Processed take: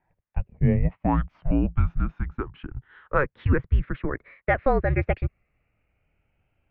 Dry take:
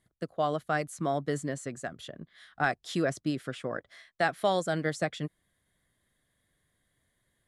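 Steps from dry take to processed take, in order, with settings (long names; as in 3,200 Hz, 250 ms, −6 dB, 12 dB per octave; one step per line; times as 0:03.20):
gliding playback speed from 58% → 165%
single-sideband voice off tune −290 Hz 170–2,700 Hz
low-shelf EQ 120 Hz +8.5 dB
level +5 dB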